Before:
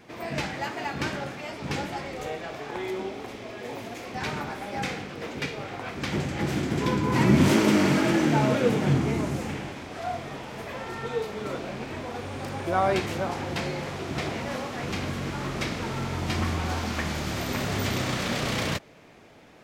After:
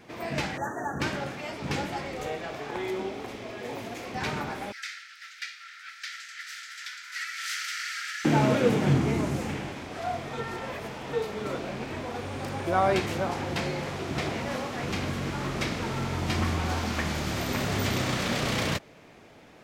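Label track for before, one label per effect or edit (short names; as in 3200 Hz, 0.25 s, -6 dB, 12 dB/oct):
0.570000	1.010000	spectral delete 1900–5700 Hz
4.720000	8.250000	rippled Chebyshev high-pass 1300 Hz, ripple 6 dB
10.330000	11.130000	reverse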